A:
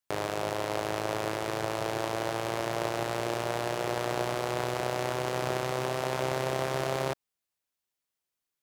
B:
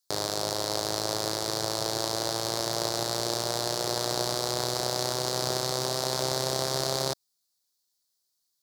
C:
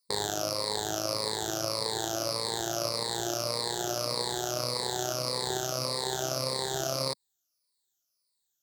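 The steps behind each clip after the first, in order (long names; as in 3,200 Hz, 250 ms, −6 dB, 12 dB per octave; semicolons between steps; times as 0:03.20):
high shelf with overshoot 3,400 Hz +9 dB, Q 3
rippled gain that drifts along the octave scale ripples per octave 0.94, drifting −1.7 Hz, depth 16 dB; speech leveller; level −5 dB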